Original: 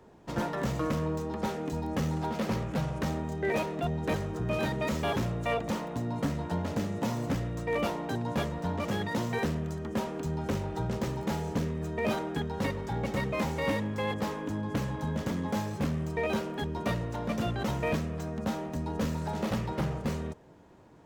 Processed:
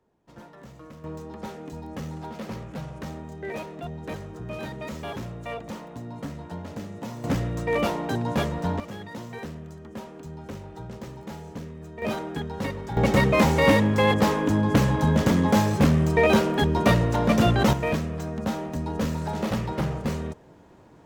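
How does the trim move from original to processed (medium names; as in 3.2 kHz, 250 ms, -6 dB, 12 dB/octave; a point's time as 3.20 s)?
-15 dB
from 1.04 s -4.5 dB
from 7.24 s +5.5 dB
from 8.80 s -6.5 dB
from 12.02 s +1 dB
from 12.97 s +11.5 dB
from 17.73 s +4 dB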